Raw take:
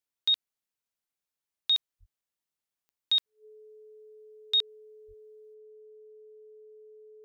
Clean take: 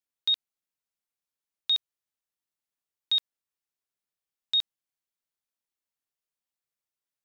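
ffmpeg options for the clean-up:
-filter_complex "[0:a]adeclick=t=4,bandreject=f=430:w=30,asplit=3[s0][s1][s2];[s0]afade=t=out:st=1.99:d=0.02[s3];[s1]highpass=f=140:w=0.5412,highpass=f=140:w=1.3066,afade=t=in:st=1.99:d=0.02,afade=t=out:st=2.11:d=0.02[s4];[s2]afade=t=in:st=2.11:d=0.02[s5];[s3][s4][s5]amix=inputs=3:normalize=0,asplit=3[s6][s7][s8];[s6]afade=t=out:st=5.07:d=0.02[s9];[s7]highpass=f=140:w=0.5412,highpass=f=140:w=1.3066,afade=t=in:st=5.07:d=0.02,afade=t=out:st=5.19:d=0.02[s10];[s8]afade=t=in:st=5.19:d=0.02[s11];[s9][s10][s11]amix=inputs=3:normalize=0,asetnsamples=n=441:p=0,asendcmd='5.54 volume volume 11dB',volume=1"

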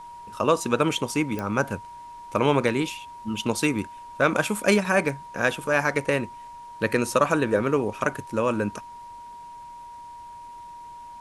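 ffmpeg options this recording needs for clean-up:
-af "adeclick=t=4,bandreject=f=950:w=30,agate=range=0.0891:threshold=0.02"

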